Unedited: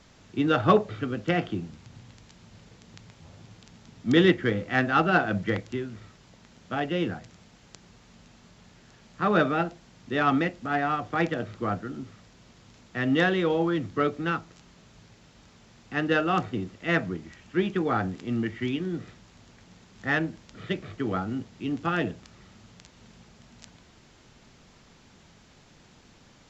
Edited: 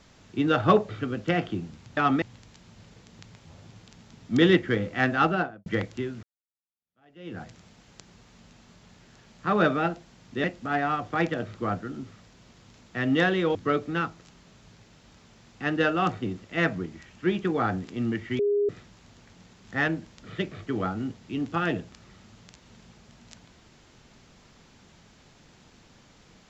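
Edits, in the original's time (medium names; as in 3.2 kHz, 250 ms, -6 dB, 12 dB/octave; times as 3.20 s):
4.97–5.41 s: studio fade out
5.98–7.17 s: fade in exponential
10.19–10.44 s: move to 1.97 s
13.55–13.86 s: delete
18.70–19.00 s: bleep 409 Hz -20.5 dBFS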